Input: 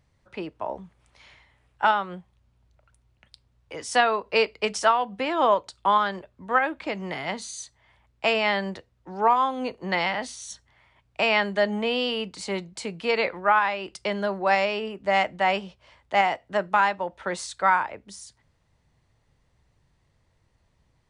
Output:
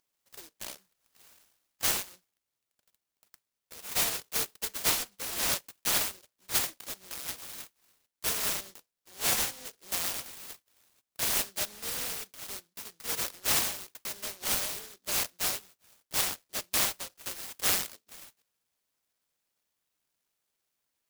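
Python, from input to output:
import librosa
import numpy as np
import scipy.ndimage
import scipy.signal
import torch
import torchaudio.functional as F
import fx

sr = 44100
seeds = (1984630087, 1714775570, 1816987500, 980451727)

y = scipy.signal.sosfilt(scipy.signal.butter(2, 990.0, 'highpass', fs=sr, output='sos'), x)
y = fx.noise_mod_delay(y, sr, seeds[0], noise_hz=4800.0, depth_ms=0.4)
y = F.gain(torch.from_numpy(y), -4.5).numpy()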